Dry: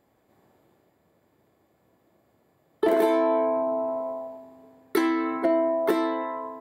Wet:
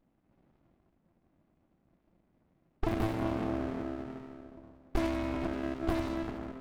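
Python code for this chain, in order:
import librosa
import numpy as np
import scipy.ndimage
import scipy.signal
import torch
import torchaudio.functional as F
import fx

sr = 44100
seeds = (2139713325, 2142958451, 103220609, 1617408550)

p1 = fx.diode_clip(x, sr, knee_db=-19.0)
p2 = scipy.signal.sosfilt(scipy.signal.butter(4, 160.0, 'highpass', fs=sr, output='sos'), p1)
p3 = fx.band_shelf(p2, sr, hz=840.0, db=-9.0, octaves=1.7)
p4 = fx.env_lowpass(p3, sr, base_hz=1500.0, full_db=-25.5)
p5 = p4 + fx.echo_split(p4, sr, split_hz=390.0, low_ms=386, high_ms=91, feedback_pct=52, wet_db=-10.0, dry=0)
y = fx.running_max(p5, sr, window=65)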